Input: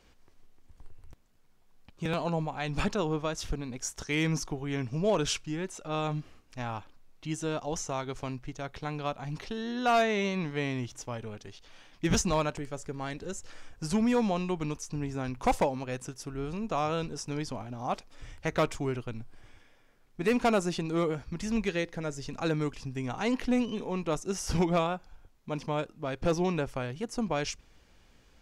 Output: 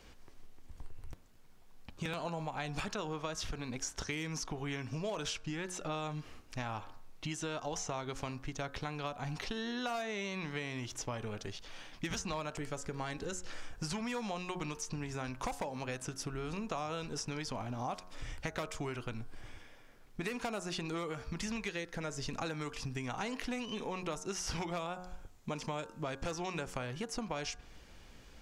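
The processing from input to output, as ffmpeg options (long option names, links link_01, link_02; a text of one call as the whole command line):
ffmpeg -i in.wav -filter_complex "[0:a]asettb=1/sr,asplit=3[link_01][link_02][link_03];[link_01]atrim=end=24.934[link_04];[link_02]atrim=start=24.93:end=26.79,asetpts=PTS-STARTPTS,afade=type=in:duration=0.004:curve=qsin,afade=type=out:start_time=1.856:duration=0.004:curve=qsin,equalizer=frequency=7300:width_type=o:width=0.49:gain=6.5[link_05];[link_03]atrim=start=26.786[link_06];[link_04][link_05]acrossfade=duration=0.004:curve1=hsin:curve2=qsin[link_07];[link_07][link_06]acrossfade=duration=0.004:curve1=qsin:curve2=hsin,acrossover=split=760|5900[link_08][link_09][link_10];[link_08]acompressor=threshold=-40dB:ratio=4[link_11];[link_09]acompressor=threshold=-38dB:ratio=4[link_12];[link_10]acompressor=threshold=-51dB:ratio=4[link_13];[link_11][link_12][link_13]amix=inputs=3:normalize=0,bandreject=frequency=90.76:width_type=h:width=4,bandreject=frequency=181.52:width_type=h:width=4,bandreject=frequency=272.28:width_type=h:width=4,bandreject=frequency=363.04:width_type=h:width=4,bandreject=frequency=453.8:width_type=h:width=4,bandreject=frequency=544.56:width_type=h:width=4,bandreject=frequency=635.32:width_type=h:width=4,bandreject=frequency=726.08:width_type=h:width=4,bandreject=frequency=816.84:width_type=h:width=4,bandreject=frequency=907.6:width_type=h:width=4,bandreject=frequency=998.36:width_type=h:width=4,bandreject=frequency=1089.12:width_type=h:width=4,bandreject=frequency=1179.88:width_type=h:width=4,bandreject=frequency=1270.64:width_type=h:width=4,bandreject=frequency=1361.4:width_type=h:width=4,bandreject=frequency=1452.16:width_type=h:width=4,bandreject=frequency=1542.92:width_type=h:width=4,bandreject=frequency=1633.68:width_type=h:width=4,bandreject=frequency=1724.44:width_type=h:width=4,acompressor=threshold=-41dB:ratio=3,volume=5dB" out.wav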